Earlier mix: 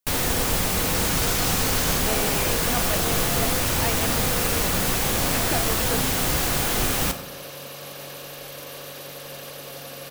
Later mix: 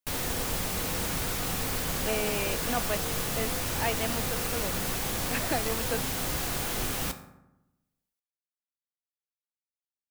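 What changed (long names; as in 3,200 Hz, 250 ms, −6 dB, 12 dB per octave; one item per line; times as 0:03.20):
first sound −8.0 dB
second sound: muted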